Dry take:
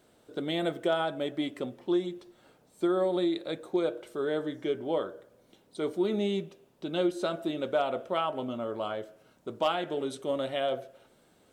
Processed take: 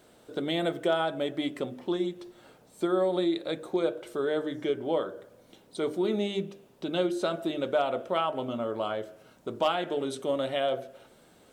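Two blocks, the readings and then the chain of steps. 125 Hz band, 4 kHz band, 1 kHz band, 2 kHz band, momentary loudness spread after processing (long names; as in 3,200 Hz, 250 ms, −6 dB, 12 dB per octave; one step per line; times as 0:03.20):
+1.0 dB, +2.0 dB, +1.5 dB, +2.0 dB, 12 LU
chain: mains-hum notches 50/100/150/200/250/300/350/400 Hz
in parallel at −1 dB: downward compressor, threshold −39 dBFS, peak gain reduction 15.5 dB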